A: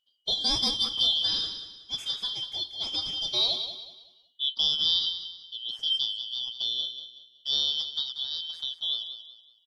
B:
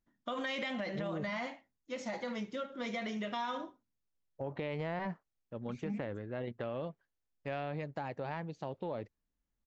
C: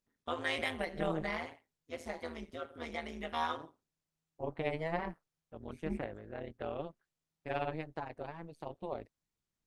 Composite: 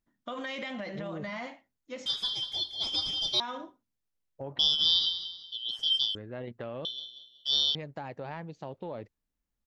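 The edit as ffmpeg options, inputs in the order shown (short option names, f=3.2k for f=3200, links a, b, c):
-filter_complex "[0:a]asplit=3[a][b][c];[1:a]asplit=4[d][e][f][g];[d]atrim=end=2.062[h];[a]atrim=start=2.058:end=3.402[i];[e]atrim=start=3.398:end=4.592[j];[b]atrim=start=4.588:end=6.152[k];[f]atrim=start=6.148:end=6.852[l];[c]atrim=start=6.848:end=7.752[m];[g]atrim=start=7.748[n];[h][i]acrossfade=d=0.004:c1=hsin:c2=hsin[o];[o][j]acrossfade=d=0.004:c1=hsin:c2=hsin[p];[p][k]acrossfade=d=0.004:c1=hsin:c2=hsin[q];[q][l]acrossfade=d=0.004:c1=hsin:c2=hsin[r];[r][m]acrossfade=d=0.004:c1=hsin:c2=hsin[s];[s][n]acrossfade=d=0.004:c1=hsin:c2=hsin"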